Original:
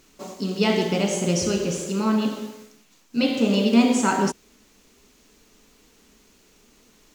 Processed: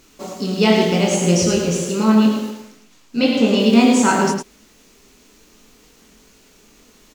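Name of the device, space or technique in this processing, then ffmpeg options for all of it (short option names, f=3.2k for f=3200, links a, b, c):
slapback doubling: -filter_complex "[0:a]asettb=1/sr,asplit=3[a][b][c];[a]atrim=end=2.504[d];[b]atrim=start=2.5:end=3.6,asetpts=PTS-STARTPTS,afade=t=in:d=0.004:c=qsin,afade=t=out:st=1.096:d=0.004:c=qsin,highshelf=f=8.4k:g=-6[e];[c]atrim=start=3.596[f];[d][e]acrossfade=d=0.004:c1=hsin:c2=qsin[g];[g][f]acrossfade=d=0.004:c1=qsin:c2=hsin,asplit=3[h][i][j];[i]adelay=23,volume=-5dB[k];[j]adelay=107,volume=-6dB[l];[h][k][l]amix=inputs=3:normalize=0,volume=4dB"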